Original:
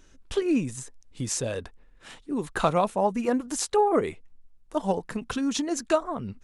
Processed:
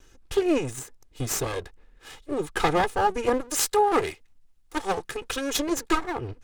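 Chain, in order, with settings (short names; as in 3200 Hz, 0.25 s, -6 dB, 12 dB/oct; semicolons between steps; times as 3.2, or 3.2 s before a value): minimum comb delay 2.4 ms; 3.51–5.57 tilt shelf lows -4.5 dB, about 1100 Hz; gain +3 dB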